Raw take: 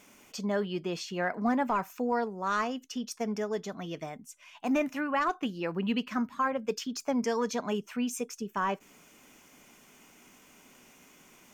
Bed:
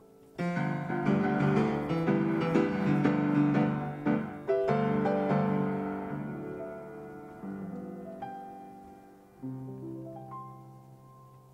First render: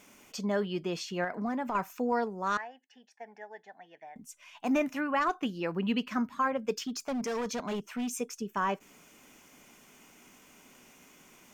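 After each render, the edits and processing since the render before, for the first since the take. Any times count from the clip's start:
0:01.24–0:01.75: downward compressor 4 to 1, threshold −30 dBFS
0:02.57–0:04.16: pair of resonant band-passes 1,200 Hz, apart 1.1 octaves
0:06.76–0:08.13: hard clipping −30 dBFS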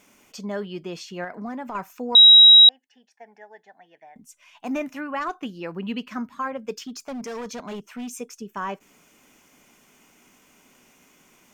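0:02.15–0:02.69: beep over 3,840 Hz −6.5 dBFS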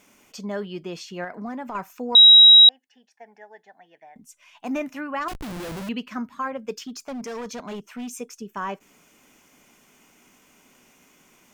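0:05.28–0:05.89: comparator with hysteresis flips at −41.5 dBFS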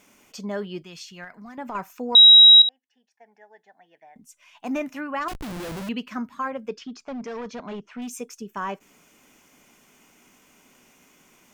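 0:00.82–0:01.58: parametric band 450 Hz −15 dB 2.5 octaves
0:02.62–0:04.72: fade in, from −13.5 dB
0:06.68–0:08.02: high-frequency loss of the air 150 metres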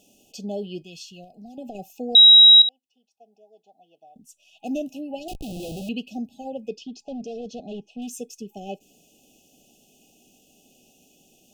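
brick-wall band-stop 820–2,500 Hz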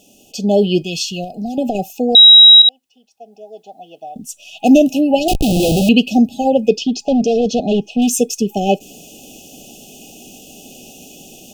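automatic gain control gain up to 11 dB
boost into a limiter +8.5 dB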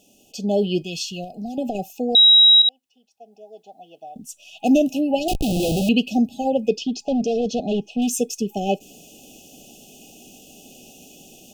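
level −7 dB

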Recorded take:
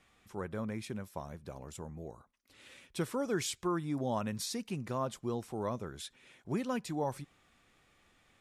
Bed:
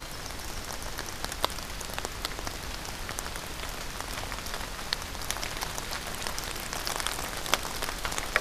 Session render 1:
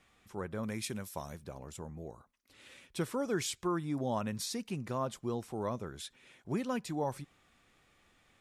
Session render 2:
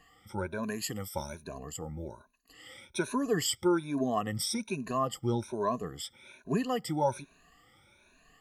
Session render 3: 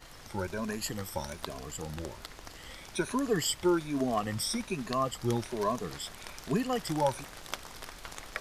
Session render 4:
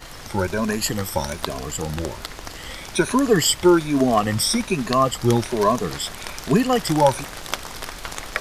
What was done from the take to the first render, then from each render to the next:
0:00.63–0:01.44: high-shelf EQ 3,100 Hz +12 dB
rippled gain that drifts along the octave scale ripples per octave 1.5, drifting +1.2 Hz, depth 23 dB
mix in bed −12 dB
level +12 dB; brickwall limiter −3 dBFS, peak gain reduction 1 dB

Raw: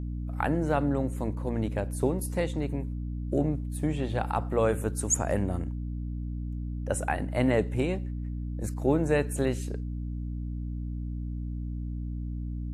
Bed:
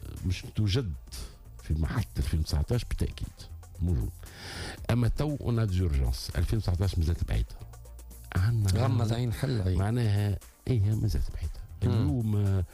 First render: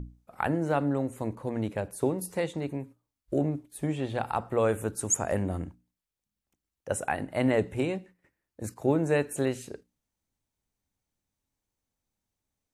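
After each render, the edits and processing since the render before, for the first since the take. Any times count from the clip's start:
mains-hum notches 60/120/180/240/300 Hz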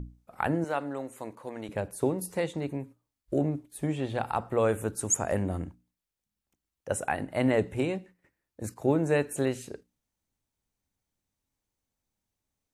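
0:00.64–0:01.69: high-pass filter 690 Hz 6 dB per octave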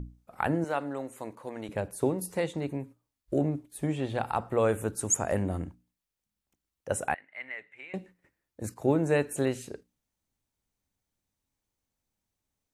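0:07.14–0:07.94: resonant band-pass 2,100 Hz, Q 5.3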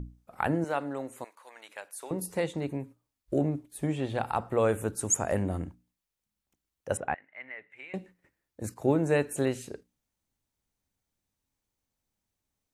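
0:01.24–0:02.11: high-pass filter 1,200 Hz
0:06.97–0:07.70: high-frequency loss of the air 330 metres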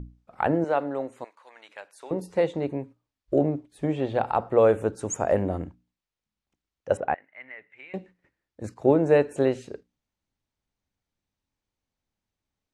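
low-pass filter 5,200 Hz 12 dB per octave
dynamic equaliser 540 Hz, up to +8 dB, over −41 dBFS, Q 0.77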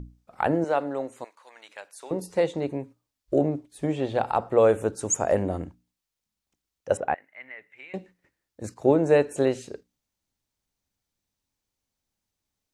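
bass and treble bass −1 dB, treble +8 dB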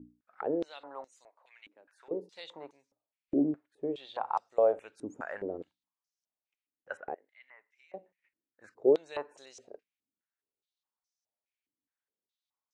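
band-pass on a step sequencer 4.8 Hz 280–5,700 Hz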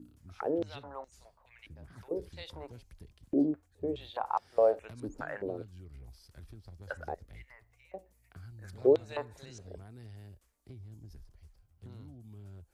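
mix in bed −22.5 dB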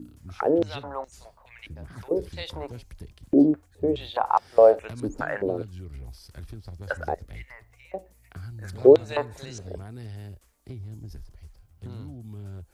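level +10 dB

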